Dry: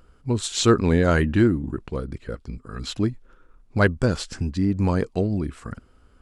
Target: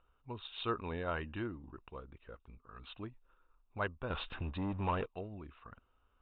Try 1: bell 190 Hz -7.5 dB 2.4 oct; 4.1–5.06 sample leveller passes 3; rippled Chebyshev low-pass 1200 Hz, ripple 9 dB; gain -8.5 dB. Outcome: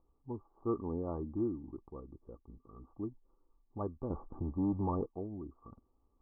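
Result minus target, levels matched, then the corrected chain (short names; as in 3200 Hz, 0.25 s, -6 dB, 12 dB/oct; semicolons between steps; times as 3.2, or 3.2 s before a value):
1000 Hz band -6.0 dB
bell 190 Hz -7.5 dB 2.4 oct; 4.1–5.06 sample leveller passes 3; rippled Chebyshev low-pass 3800 Hz, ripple 9 dB; gain -8.5 dB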